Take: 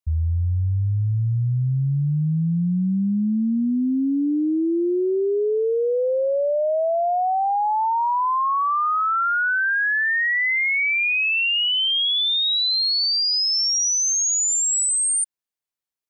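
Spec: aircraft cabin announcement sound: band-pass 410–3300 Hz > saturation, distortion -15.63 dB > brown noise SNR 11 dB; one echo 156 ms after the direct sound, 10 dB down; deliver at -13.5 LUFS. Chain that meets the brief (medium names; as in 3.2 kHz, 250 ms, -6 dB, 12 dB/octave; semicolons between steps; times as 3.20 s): band-pass 410–3300 Hz; delay 156 ms -10 dB; saturation -20.5 dBFS; brown noise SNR 11 dB; trim +11 dB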